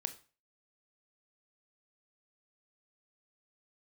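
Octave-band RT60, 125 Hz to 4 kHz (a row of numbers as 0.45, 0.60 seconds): 0.40, 0.35, 0.35, 0.35, 0.35, 0.35 seconds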